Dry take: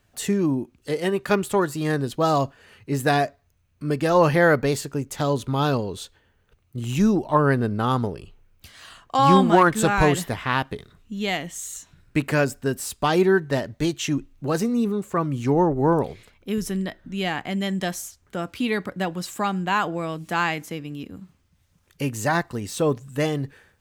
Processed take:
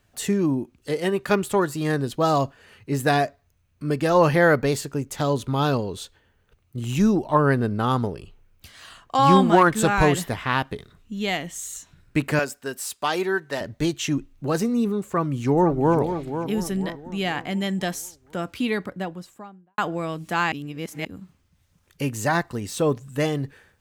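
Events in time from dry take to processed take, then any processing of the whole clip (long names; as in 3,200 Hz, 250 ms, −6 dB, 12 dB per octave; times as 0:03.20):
0:12.39–0:13.61: high-pass filter 730 Hz 6 dB per octave
0:15.08–0:15.97: delay throw 490 ms, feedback 45%, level −9 dB
0:18.57–0:19.78: fade out and dull
0:20.52–0:21.05: reverse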